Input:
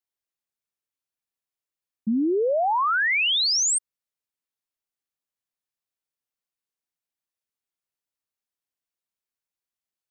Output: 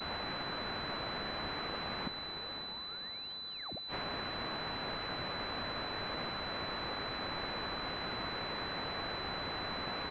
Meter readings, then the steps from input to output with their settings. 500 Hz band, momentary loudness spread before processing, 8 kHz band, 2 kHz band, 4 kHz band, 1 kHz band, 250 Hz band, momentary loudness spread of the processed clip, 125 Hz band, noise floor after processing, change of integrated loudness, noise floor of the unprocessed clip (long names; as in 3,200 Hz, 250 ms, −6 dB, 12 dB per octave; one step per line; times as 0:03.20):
−11.5 dB, 7 LU, below −40 dB, −10.5 dB, −8.0 dB, −9.0 dB, −12.5 dB, 3 LU, can't be measured, −44 dBFS, −17.5 dB, below −85 dBFS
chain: converter with a step at zero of −35.5 dBFS
downward expander −39 dBFS
comb filter 2.2 ms, depth 53%
in parallel at −11 dB: decimation without filtering 32×
on the sum: gate with flip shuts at −23 dBFS, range −38 dB
spectral tilt +3.5 dB per octave
feedback delay with all-pass diffusion 577 ms, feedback 50%, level −9 dB
switching amplifier with a slow clock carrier 4,000 Hz
level +2 dB